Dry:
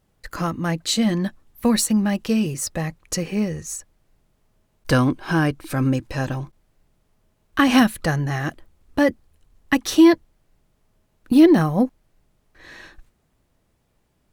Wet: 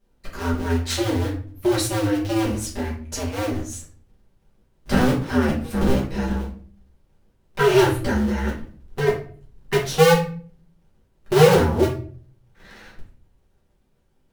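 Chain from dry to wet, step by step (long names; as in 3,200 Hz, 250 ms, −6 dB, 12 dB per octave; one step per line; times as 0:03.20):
sub-harmonics by changed cycles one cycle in 2, inverted
low-shelf EQ 210 Hz +3.5 dB
rectangular room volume 39 cubic metres, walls mixed, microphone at 1.2 metres
level −10.5 dB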